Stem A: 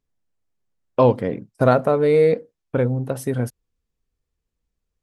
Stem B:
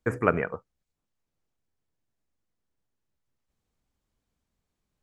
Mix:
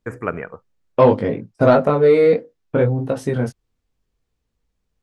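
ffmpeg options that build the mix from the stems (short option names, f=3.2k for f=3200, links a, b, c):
-filter_complex "[0:a]flanger=delay=18:depth=4.8:speed=0.68,lowpass=6.1k,acontrast=69,volume=0.5dB[a];[1:a]volume=-1.5dB[b];[a][b]amix=inputs=2:normalize=0"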